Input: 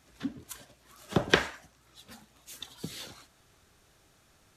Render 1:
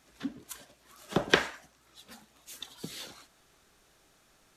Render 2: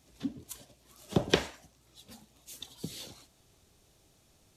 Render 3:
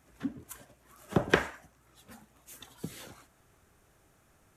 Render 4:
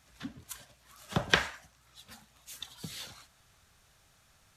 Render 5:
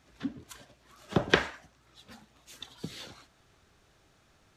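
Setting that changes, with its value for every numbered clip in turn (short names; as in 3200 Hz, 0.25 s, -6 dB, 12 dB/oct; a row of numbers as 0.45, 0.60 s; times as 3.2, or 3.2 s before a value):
bell, frequency: 91, 1500, 4200, 340, 12000 Hz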